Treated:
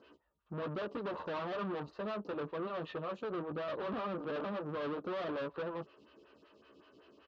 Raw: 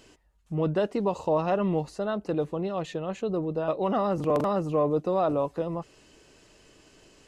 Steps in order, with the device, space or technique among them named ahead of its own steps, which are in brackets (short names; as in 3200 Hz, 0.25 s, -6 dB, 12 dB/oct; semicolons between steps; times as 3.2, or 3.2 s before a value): 3.85–4.82 bell 3200 Hz -11.5 dB 2.6 oct; doubler 14 ms -4.5 dB; vibe pedal into a guitar amplifier (photocell phaser 5.3 Hz; tube stage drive 37 dB, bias 0.7; speaker cabinet 97–3900 Hz, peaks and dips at 140 Hz -6 dB, 770 Hz -6 dB, 1200 Hz +6 dB, 2100 Hz -8 dB); gain +1.5 dB